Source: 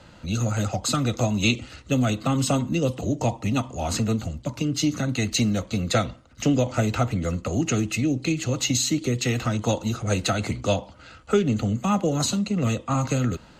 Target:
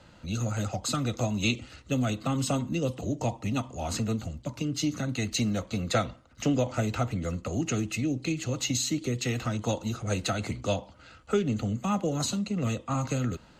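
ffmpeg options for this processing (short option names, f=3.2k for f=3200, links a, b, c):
-filter_complex "[0:a]asettb=1/sr,asplit=3[a][b][c];[a]atrim=end=5.464[d];[b]atrim=start=5.46:end=6.75,asetpts=PTS-STARTPTS,afade=t=in:d=0.004:c=qsin,afade=t=out:st=1.286:d=0.004:c=qsin,equalizer=f=990:t=o:w=2.1:g=3[e];[c]atrim=start=6.746[f];[d][e]acrossfade=d=0.004:c1=hsin:c2=qsin[g];[g][f]acrossfade=d=0.004:c1=qsin:c2=hsin,volume=-5.5dB"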